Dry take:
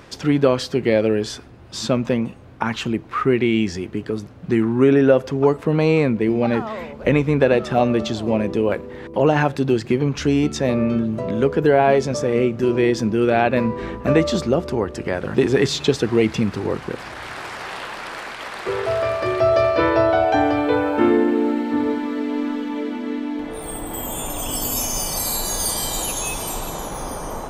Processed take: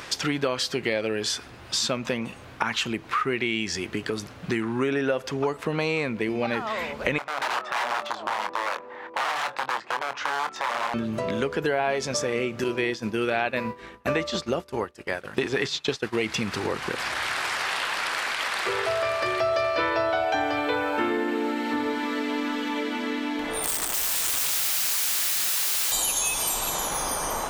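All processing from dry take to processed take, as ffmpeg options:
-filter_complex "[0:a]asettb=1/sr,asplit=3[a][b][c];[a]atrim=end=7.184[d];[b]atrim=start=7.18:end=10.94,asetpts=PTS-STARTPTS,afade=t=in:d=0.004:c=qsin,afade=t=out:st=3.756:d=0.004:c=qsin,aeval=exprs='(mod(5.62*val(0)+1,2)-1)/5.62':c=same,bandpass=f=930:t=q:w=1.7,asplit=2[e][f];[f]adelay=24,volume=-10dB[g];[e][g]amix=inputs=2:normalize=0,atrim=end_sample=165816[h];[c]atrim=start=10.936[i];[d][h]acrossfade=d=0.004:c1=hsin:c2=qsin[j];[j][i]acrossfade=d=0.004:c1=qsin:c2=hsin,asettb=1/sr,asplit=3[k][l][m];[k]atrim=end=12.644[n];[l]atrim=start=12.64:end=16.18,asetpts=PTS-STARTPTS,afade=t=in:d=0.004:c=qsin,afade=t=out:st=3.536:d=0.004:c=qsin,agate=range=-33dB:threshold=-18dB:ratio=3:release=100:detection=peak,acrossover=split=6100[o][p];[p]acompressor=threshold=-57dB:ratio=4:attack=1:release=60[q];[o][q]amix=inputs=2:normalize=0,equalizer=f=12k:w=1.2:g=6.5[r];[m]atrim=start=16.176[s];[n][r]acrossfade=d=0.004:c1=hsin:c2=qsin[t];[t][s]acrossfade=d=0.004:c1=qsin:c2=hsin,asettb=1/sr,asplit=3[u][v][w];[u]atrim=end=23.634[x];[v]atrim=start=23.63:end=25.92,asetpts=PTS-STARTPTS,afade=t=in:d=0.004:c=qsin,afade=t=out:st=2.286:d=0.004:c=qsin,asubboost=boost=5.5:cutoff=170,aeval=exprs='(mod(15*val(0)+1,2)-1)/15':c=same[y];[w]atrim=start=25.916[z];[x][y]acrossfade=d=0.004:c1=hsin:c2=qsin[aa];[aa][z]acrossfade=d=0.004:c1=qsin:c2=hsin,tiltshelf=f=750:g=-7.5,acompressor=threshold=-29dB:ratio=3,volume=3.5dB"

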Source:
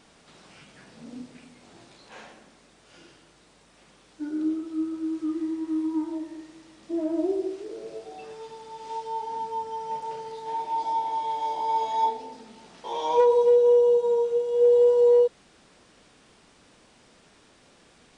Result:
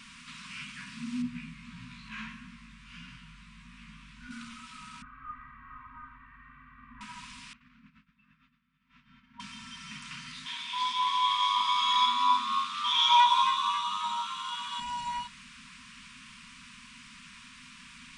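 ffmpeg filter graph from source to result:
-filter_complex "[0:a]asettb=1/sr,asplit=3[a][b][c];[a]atrim=end=1.224[d];[b]atrim=start=1.22:end=4.31,asetpts=PTS-STARTPTS,afade=t=in:d=0.004:c=qsin,afade=t=out:st=3.086:d=0.004:c=qsin,bass=f=250:g=11,treble=f=4k:g=-8,flanger=delay=16.5:depth=2.1:speed=1.6[e];[c]atrim=start=4.306[f];[d][e]acrossfade=d=0.004:c1=hsin:c2=qsin[g];[g][f]acrossfade=d=0.004:c1=qsin:c2=hsin,asettb=1/sr,asplit=3[h][i][j];[h]atrim=end=5.024[k];[i]atrim=start=5.02:end=7.01,asetpts=PTS-STARTPTS,afade=t=in:d=0.004:c=qsin,afade=t=out:st=1.986:d=0.004:c=qsin,lowpass=f=1.5k:w=0.5412,lowpass=f=1.5k:w=1.3066,aecho=1:1:2.6:0.97,atrim=end_sample=87759[l];[j]atrim=start=7.006[m];[k][l]acrossfade=d=0.004:c1=hsin:c2=qsin[n];[n][m]acrossfade=d=0.004:c1=qsin:c2=hsin,asettb=1/sr,asplit=3[o][p][q];[o]atrim=end=7.534[r];[p]atrim=start=7.53:end=9.4,asetpts=PTS-STARTPTS,afade=t=in:d=0.004:c=qsin,afade=t=out:st=1.866:d=0.004:c=qsin,lowpass=1.3k,equalizer=f=980:t=o:w=0.53:g=-12,agate=range=-33dB:threshold=-34dB:ratio=3:release=100:detection=peak[s];[q]atrim=start=9.396[t];[r][s]acrossfade=d=0.004:c1=hsin:c2=qsin[u];[u][t]acrossfade=d=0.004:c1=qsin:c2=hsin,asettb=1/sr,asplit=3[v][w][x];[v]atrim=end=10.464[y];[w]atrim=start=10.46:end=14.8,asetpts=PTS-STARTPTS,afade=t=in:d=0.004:c=qsin,afade=t=out:st=4.336:d=0.004:c=qsin,highpass=f=470:p=1,equalizer=f=3.4k:w=4.1:g=10.5,asplit=7[z][aa][ab][ac][ad][ae][af];[aa]adelay=269,afreqshift=97,volume=-7.5dB[ag];[ab]adelay=538,afreqshift=194,volume=-13.2dB[ah];[ac]adelay=807,afreqshift=291,volume=-18.9dB[ai];[ad]adelay=1076,afreqshift=388,volume=-24.5dB[aj];[ae]adelay=1345,afreqshift=485,volume=-30.2dB[ak];[af]adelay=1614,afreqshift=582,volume=-35.9dB[al];[z][ag][ah][ai][aj][ak][al]amix=inputs=7:normalize=0,atrim=end_sample=191394[am];[x]atrim=start=14.796[an];[y][am]acrossfade=d=0.004:c1=hsin:c2=qsin[ao];[ao][an]acrossfade=d=0.004:c1=qsin:c2=hsin,afftfilt=real='re*(1-between(b*sr/4096,260,940))':imag='im*(1-between(b*sr/4096,260,940))':win_size=4096:overlap=0.75,equalizer=f=100:t=o:w=0.67:g=-7,equalizer=f=400:t=o:w=0.67:g=9,equalizer=f=2.5k:t=o:w=0.67:g=8,volume=6dB"

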